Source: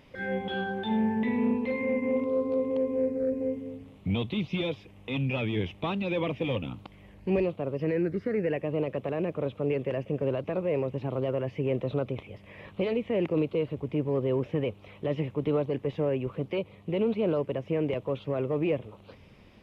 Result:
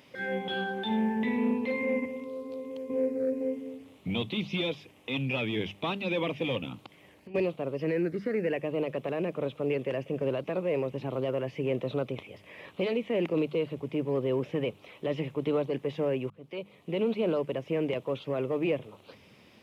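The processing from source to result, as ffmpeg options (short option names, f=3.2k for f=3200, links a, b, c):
-filter_complex "[0:a]asettb=1/sr,asplit=3[a][b][c];[a]atrim=end=2.054[d];[b]atrim=start=2.05:end=2.9,asetpts=PTS-STARTPTS,afade=t=in:d=0.004:c=qsin,afade=t=out:st=0.846:d=0.004:c=qsin,acrossover=split=120|3000[e][f][g];[f]acompressor=threshold=-43dB:ratio=2:attack=3.2:release=140:knee=2.83:detection=peak[h];[e][h][g]amix=inputs=3:normalize=0[i];[c]atrim=start=2.896[j];[d][i]acrossfade=d=0.004:c1=hsin:c2=qsin[k];[k][j]acrossfade=d=0.004:c1=qsin:c2=hsin,asplit=3[l][m][n];[l]afade=t=out:st=6.85:d=0.02[o];[m]acompressor=threshold=-41dB:ratio=16:attack=3.2:release=140:knee=1:detection=peak,afade=t=in:st=6.85:d=0.02,afade=t=out:st=7.34:d=0.02[p];[n]afade=t=in:st=7.34:d=0.02[q];[o][p][q]amix=inputs=3:normalize=0,asplit=2[r][s];[r]atrim=end=16.3,asetpts=PTS-STARTPTS,afade=t=out:st=16.296:d=0.004:c=hsin[t];[s]atrim=start=16.3,asetpts=PTS-STARTPTS,afade=t=in:d=0.88:c=qsin[u];[t][u]concat=n=2:v=0:a=1,highpass=130,highshelf=f=3.2k:g=8.5,bandreject=f=50:t=h:w=6,bandreject=f=100:t=h:w=6,bandreject=f=150:t=h:w=6,bandreject=f=200:t=h:w=6,volume=-1dB"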